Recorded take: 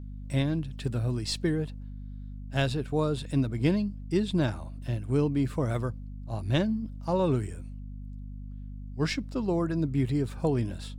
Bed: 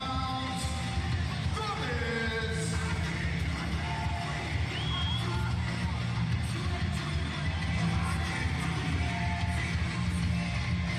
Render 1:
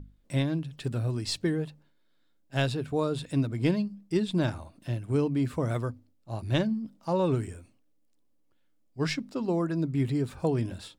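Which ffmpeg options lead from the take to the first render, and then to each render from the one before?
-af "bandreject=f=50:t=h:w=6,bandreject=f=100:t=h:w=6,bandreject=f=150:t=h:w=6,bandreject=f=200:t=h:w=6,bandreject=f=250:t=h:w=6"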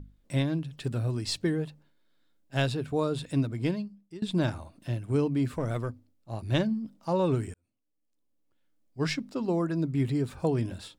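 -filter_complex "[0:a]asettb=1/sr,asplit=3[a][b][c];[a]atrim=end=5.544[d];[b]atrim=start=5.54:end=6.49,asetpts=PTS-STARTPTS,afade=t=in:d=0.004:c=qsin,afade=t=out:st=0.946:d=0.004:c=qsin,aeval=exprs='(tanh(12.6*val(0)+0.4)-tanh(0.4))/12.6':c=same[e];[c]atrim=start=6.486[f];[d][e]acrossfade=d=0.004:c1=hsin:c2=qsin[g];[g][f]acrossfade=d=0.004:c1=qsin:c2=hsin,asplit=3[h][i][j];[h]atrim=end=4.22,asetpts=PTS-STARTPTS,afade=t=out:st=3.39:d=0.83:silence=0.0891251[k];[i]atrim=start=4.22:end=7.54,asetpts=PTS-STARTPTS,afade=t=in:d=0.004:c=hsin:silence=0.0891251,afade=t=out:st=3.316:d=0.004:c=hsin[l];[j]atrim=start=7.54,asetpts=PTS-STARTPTS,afade=t=in:d=1.52[m];[k][l][m]concat=n=3:v=0:a=1"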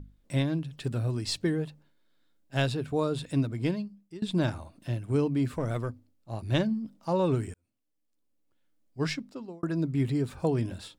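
-filter_complex "[0:a]asplit=2[a][b];[a]atrim=end=9.63,asetpts=PTS-STARTPTS,afade=t=out:st=9:d=0.63[c];[b]atrim=start=9.63,asetpts=PTS-STARTPTS,afade=t=in:d=0.004:c=hsin[d];[c][d]concat=n=2:v=0:a=1"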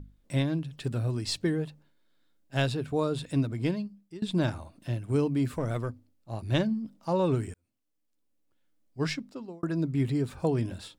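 -filter_complex "[0:a]asettb=1/sr,asplit=3[a][b][c];[a]atrim=end=3.364[d];[b]atrim=start=3.36:end=3.87,asetpts=PTS-STARTPTS,afade=t=in:d=0.004:c=qsin,afade=t=out:st=0.506:d=0.004:c=qsin,acompressor=mode=upward:threshold=-30dB:ratio=2.5:attack=3.2:release=140:knee=2.83:detection=peak[e];[c]atrim=start=3.866[f];[d][e]acrossfade=d=0.004:c1=hsin:c2=qsin[g];[g][f]acrossfade=d=0.004:c1=qsin:c2=hsin,asettb=1/sr,asplit=3[h][i][j];[h]atrim=end=5.094[k];[i]atrim=start=5.09:end=5.6,asetpts=PTS-STARTPTS,afade=t=in:d=0.004:c=qsin,afade=t=out:st=0.506:d=0.004:c=qsin,highshelf=f=8.4k:g=5.5[l];[j]atrim=start=5.596[m];[k][l]acrossfade=d=0.004:c1=hsin:c2=qsin[n];[n][m]acrossfade=d=0.004:c1=qsin:c2=hsin"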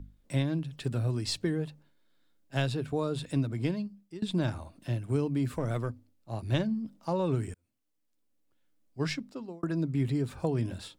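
-filter_complex "[0:a]acrossover=split=140[a][b];[b]acompressor=threshold=-29dB:ratio=2[c];[a][c]amix=inputs=2:normalize=0"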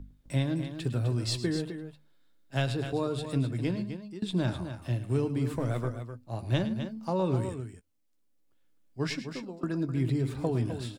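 -filter_complex "[0:a]asplit=2[a][b];[b]adelay=16,volume=-13dB[c];[a][c]amix=inputs=2:normalize=0,aecho=1:1:107|256:0.211|0.335"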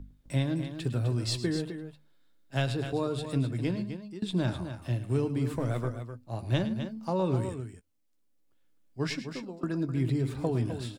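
-af anull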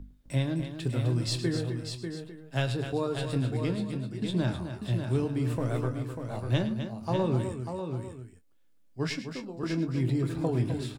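-filter_complex "[0:a]asplit=2[a][b];[b]adelay=24,volume=-11.5dB[c];[a][c]amix=inputs=2:normalize=0,aecho=1:1:593:0.447"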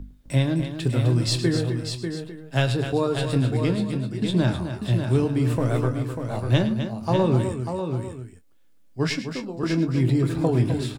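-af "volume=7dB"

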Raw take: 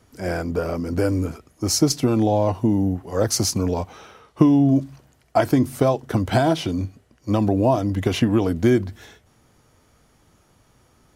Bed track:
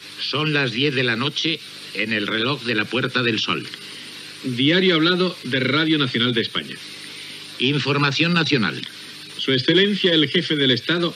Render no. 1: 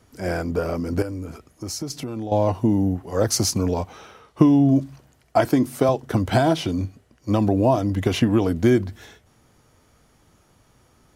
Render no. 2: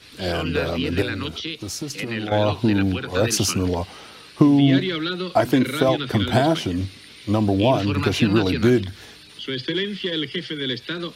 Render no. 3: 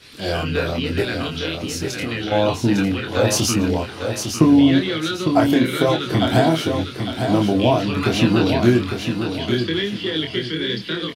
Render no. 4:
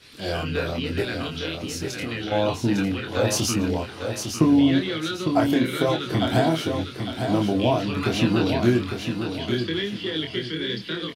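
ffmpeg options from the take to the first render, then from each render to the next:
-filter_complex "[0:a]asettb=1/sr,asplit=3[a][b][c];[a]atrim=end=1.024[d];[b]atrim=start=1.02:end=2.32,asetpts=PTS-STARTPTS,afade=t=in:d=0.004:c=qsin,afade=t=out:st=1.296:d=0.004:c=qsin,acompressor=threshold=-30dB:ratio=3:attack=3.2:release=140:knee=1:detection=peak[e];[c]atrim=start=2.316[f];[d][e]acrossfade=d=0.004:c1=hsin:c2=qsin[g];[g][f]acrossfade=d=0.004:c1=qsin:c2=hsin,asettb=1/sr,asplit=3[h][i][j];[h]atrim=end=5.454[k];[i]atrim=start=5.45:end=5.89,asetpts=PTS-STARTPTS,afade=t=in:d=0.004:c=qsin,afade=t=out:st=0.436:d=0.004:c=qsin,highpass=160[l];[j]atrim=start=5.886[m];[k][l]acrossfade=d=0.004:c1=hsin:c2=qsin[n];[n][m]acrossfade=d=0.004:c1=qsin:c2=hsin"
-filter_complex "[1:a]volume=-8.5dB[a];[0:a][a]amix=inputs=2:normalize=0"
-filter_complex "[0:a]asplit=2[a][b];[b]adelay=25,volume=-4dB[c];[a][c]amix=inputs=2:normalize=0,aecho=1:1:854|1708|2562|3416:0.473|0.147|0.0455|0.0141"
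-af "volume=-4.5dB"

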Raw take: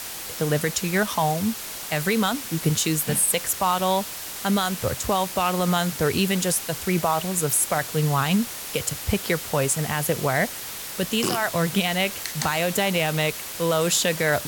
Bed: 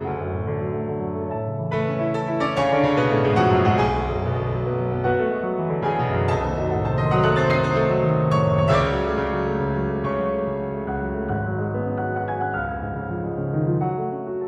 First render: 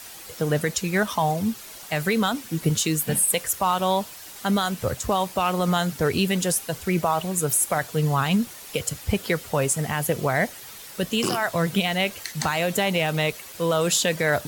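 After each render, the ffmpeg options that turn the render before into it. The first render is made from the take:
-af "afftdn=nr=9:nf=-35"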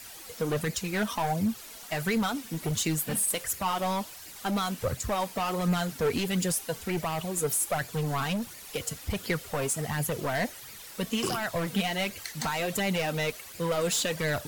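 -af "asoftclip=type=hard:threshold=-20dB,flanger=delay=0.4:depth=4.1:regen=36:speed=1.4:shape=sinusoidal"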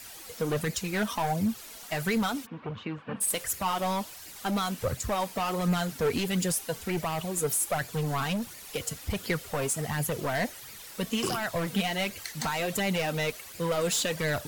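-filter_complex "[0:a]asplit=3[a][b][c];[a]afade=t=out:st=2.45:d=0.02[d];[b]highpass=110,equalizer=f=160:t=q:w=4:g=-8,equalizer=f=350:t=q:w=4:g=-8,equalizer=f=670:t=q:w=4:g=-5,equalizer=f=1.1k:t=q:w=4:g=6,equalizer=f=2k:t=q:w=4:g=-8,lowpass=f=2.4k:w=0.5412,lowpass=f=2.4k:w=1.3066,afade=t=in:st=2.45:d=0.02,afade=t=out:st=3.2:d=0.02[e];[c]afade=t=in:st=3.2:d=0.02[f];[d][e][f]amix=inputs=3:normalize=0"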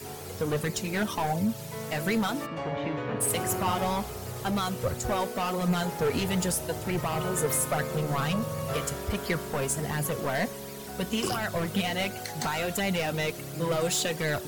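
-filter_complex "[1:a]volume=-14.5dB[a];[0:a][a]amix=inputs=2:normalize=0"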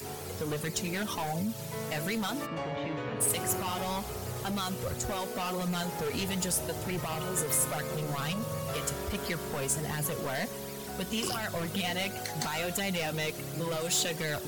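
-filter_complex "[0:a]acrossover=split=2600[a][b];[a]alimiter=level_in=2.5dB:limit=-24dB:level=0:latency=1:release=97,volume=-2.5dB[c];[b]acompressor=mode=upward:threshold=-47dB:ratio=2.5[d];[c][d]amix=inputs=2:normalize=0"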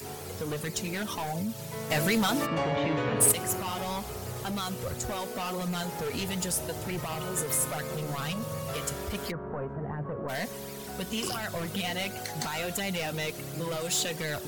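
-filter_complex "[0:a]asettb=1/sr,asplit=3[a][b][c];[a]atrim=end=1.904[d];[b]atrim=start=1.9:end=3.32,asetpts=PTS-STARTPTS,afade=t=in:d=0.004:c=qsin,afade=t=out:st=1.416:d=0.004:c=qsin,acontrast=70[e];[c]atrim=start=3.316[f];[d][e]acrossfade=d=0.004:c1=hsin:c2=qsin[g];[g][f]acrossfade=d=0.004:c1=qsin:c2=hsin,asplit=3[h][i][j];[h]afade=t=out:st=9.3:d=0.02[k];[i]lowpass=f=1.4k:w=0.5412,lowpass=f=1.4k:w=1.3066,afade=t=in:st=9.3:d=0.02,afade=t=out:st=10.28:d=0.02[l];[j]afade=t=in:st=10.28:d=0.02[m];[k][l][m]amix=inputs=3:normalize=0"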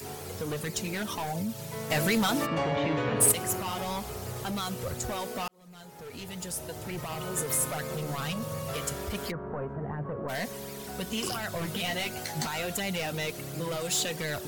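-filter_complex "[0:a]asettb=1/sr,asplit=3[a][b][c];[a]atrim=end=11.604[d];[b]atrim=start=11.6:end=12.47,asetpts=PTS-STARTPTS,afade=t=in:d=0.004:c=qsin,afade=t=out:st=0.866:d=0.004:c=qsin,asplit=2[e][f];[f]adelay=13,volume=-5.5dB[g];[e][g]amix=inputs=2:normalize=0,atrim=end_sample=38367[h];[c]atrim=start=12.466[i];[d][h]acrossfade=d=0.004:c1=hsin:c2=qsin[j];[j][i]acrossfade=d=0.004:c1=qsin:c2=hsin,asplit=2[k][l];[k]atrim=end=5.48,asetpts=PTS-STARTPTS,afade=t=out:st=5.476:d=0.004:c=hsin[m];[l]atrim=start=5.48,asetpts=PTS-STARTPTS,afade=t=in:d=1.99[n];[m][n]concat=n=2:v=0:a=1"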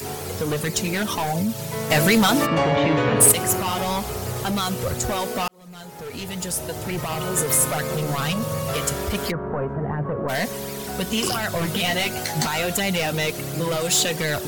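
-af "volume=9dB,alimiter=limit=-3dB:level=0:latency=1"

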